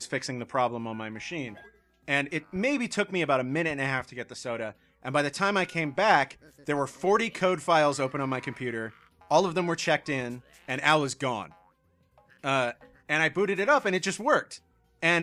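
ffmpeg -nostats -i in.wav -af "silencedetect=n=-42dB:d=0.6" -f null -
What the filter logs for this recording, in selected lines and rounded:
silence_start: 11.52
silence_end: 12.44 | silence_duration: 0.92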